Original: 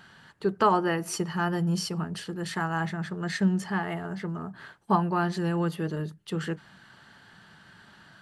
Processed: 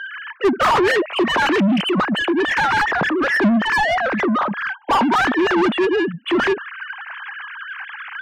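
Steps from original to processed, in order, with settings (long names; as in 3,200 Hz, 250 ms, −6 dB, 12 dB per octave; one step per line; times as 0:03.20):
three sine waves on the formant tracks
mid-hump overdrive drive 33 dB, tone 2,000 Hz, clips at −8 dBFS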